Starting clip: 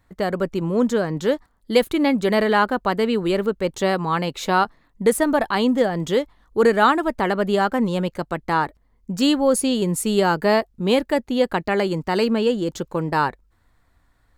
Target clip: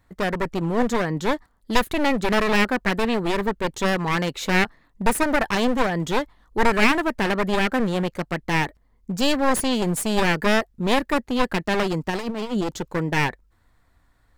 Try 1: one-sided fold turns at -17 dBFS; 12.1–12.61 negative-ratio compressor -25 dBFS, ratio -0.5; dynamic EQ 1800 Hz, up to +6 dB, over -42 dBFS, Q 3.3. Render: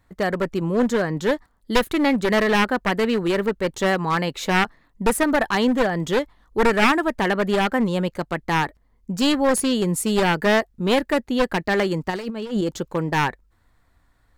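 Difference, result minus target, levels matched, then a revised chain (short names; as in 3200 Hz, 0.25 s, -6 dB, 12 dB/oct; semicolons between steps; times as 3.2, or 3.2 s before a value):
one-sided fold: distortion -8 dB
one-sided fold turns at -23 dBFS; 12.1–12.61 negative-ratio compressor -25 dBFS, ratio -0.5; dynamic EQ 1800 Hz, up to +6 dB, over -42 dBFS, Q 3.3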